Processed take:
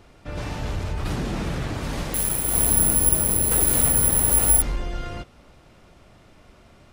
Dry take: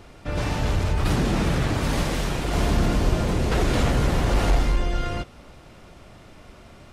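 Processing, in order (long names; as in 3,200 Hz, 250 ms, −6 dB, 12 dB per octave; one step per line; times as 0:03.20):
0:02.14–0:04.62: bad sample-rate conversion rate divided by 4×, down none, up zero stuff
level −5 dB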